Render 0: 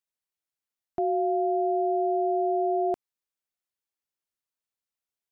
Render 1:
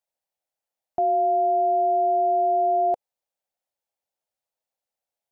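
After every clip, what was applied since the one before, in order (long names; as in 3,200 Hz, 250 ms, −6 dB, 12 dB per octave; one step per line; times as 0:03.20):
flat-topped bell 660 Hz +12 dB 1 octave
brickwall limiter −16 dBFS, peak gain reduction 5 dB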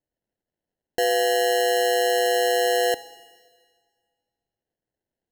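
decimation without filtering 37×
four-comb reverb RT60 1.7 s, combs from 28 ms, DRR 15 dB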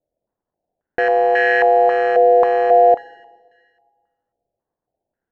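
loose part that buzzes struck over −40 dBFS, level −22 dBFS
low-pass on a step sequencer 3.7 Hz 620–1,700 Hz
level +3 dB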